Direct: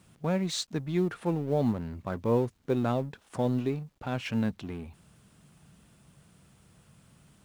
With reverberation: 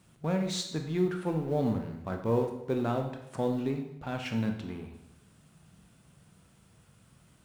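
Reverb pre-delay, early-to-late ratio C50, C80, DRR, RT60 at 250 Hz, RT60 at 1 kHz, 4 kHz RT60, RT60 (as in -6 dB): 19 ms, 7.0 dB, 10.0 dB, 4.0 dB, 0.90 s, 0.80 s, 0.70 s, 0.80 s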